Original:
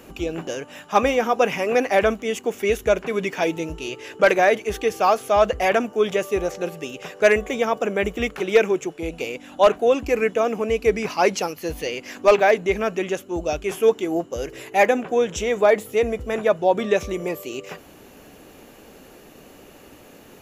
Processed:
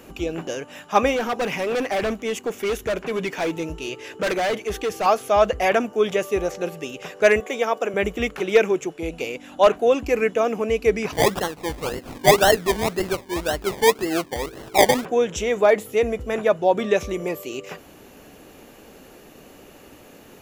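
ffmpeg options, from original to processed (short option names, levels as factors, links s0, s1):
-filter_complex "[0:a]asettb=1/sr,asplit=3[s0][s1][s2];[s0]atrim=end=1.164[s3];[s1]atrim=start=1.16:end=5.06,asetpts=PTS-STARTPTS,afade=t=in:d=0.004:c=qsin,afade=t=out:st=3.896:d=0.004:c=qsin,asoftclip=type=hard:threshold=0.1[s4];[s2]atrim=start=5.056[s5];[s3][s4]acrossfade=d=0.004:c1=hsin:c2=qsin[s6];[s6][s5]acrossfade=d=0.004:c1=qsin:c2=hsin,asettb=1/sr,asplit=3[s7][s8][s9];[s7]atrim=end=7.404[s10];[s8]atrim=start=7.4:end=7.94,asetpts=PTS-STARTPTS,afade=t=in:d=0.004:c=qsin,afade=t=out:st=0.536:d=0.004:c=qsin,highpass=320[s11];[s9]atrim=start=7.936[s12];[s10][s11]acrossfade=d=0.004:c1=hsin:c2=qsin[s13];[s13][s12]acrossfade=d=0.004:c1=qsin:c2=hsin,asplit=3[s14][s15][s16];[s14]afade=t=out:st=11.11:d=0.02[s17];[s15]acrusher=samples=26:mix=1:aa=0.000001:lfo=1:lforange=15.6:lforate=1.9,afade=t=in:st=11.11:d=0.02,afade=t=out:st=15.04:d=0.02[s18];[s16]afade=t=in:st=15.04:d=0.02[s19];[s17][s18][s19]amix=inputs=3:normalize=0"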